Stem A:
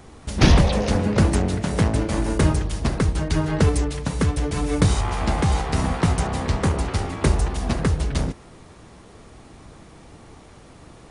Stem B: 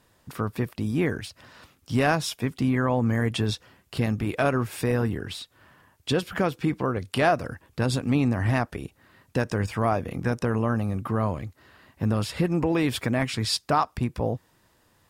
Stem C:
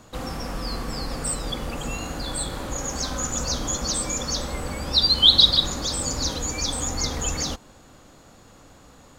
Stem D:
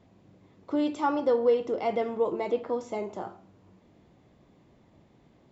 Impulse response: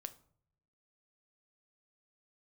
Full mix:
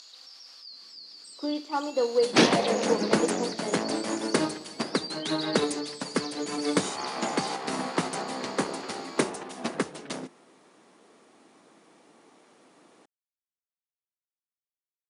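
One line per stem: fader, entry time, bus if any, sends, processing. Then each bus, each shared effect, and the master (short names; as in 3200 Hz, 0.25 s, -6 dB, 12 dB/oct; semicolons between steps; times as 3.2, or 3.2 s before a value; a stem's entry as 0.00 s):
-1.5 dB, 1.95 s, send -6 dB, dry
off
-13.0 dB, 0.00 s, send -9 dB, upward compressor, threshold -27 dBFS; band-pass 4600 Hz, Q 7.8; fast leveller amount 70%
+1.0 dB, 0.70 s, no send, dry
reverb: on, RT60 0.60 s, pre-delay 6 ms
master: HPF 230 Hz 24 dB/oct; upward expander 1.5:1, over -35 dBFS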